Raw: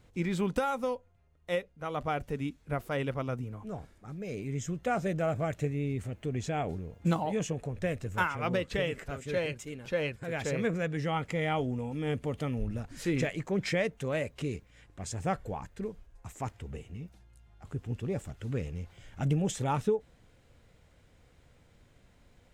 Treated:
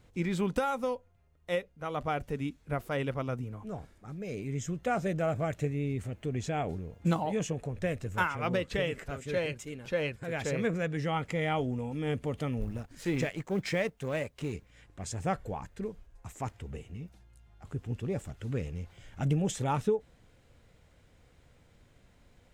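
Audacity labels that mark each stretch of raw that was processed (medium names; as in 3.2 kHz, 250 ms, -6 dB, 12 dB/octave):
12.610000	14.530000	companding laws mixed up coded by A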